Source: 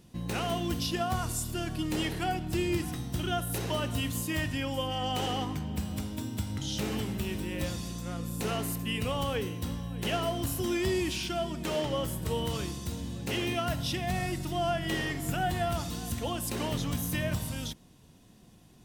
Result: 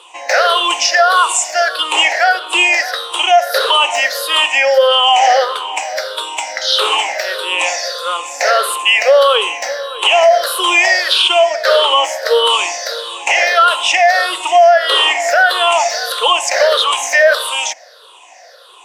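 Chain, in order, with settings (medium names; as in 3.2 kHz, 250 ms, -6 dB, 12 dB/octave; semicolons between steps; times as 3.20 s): drifting ripple filter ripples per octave 0.65, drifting -1.6 Hz, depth 19 dB; elliptic high-pass 540 Hz, stop band 60 dB; distance through air 80 m; loudness maximiser +24 dB; trim -1 dB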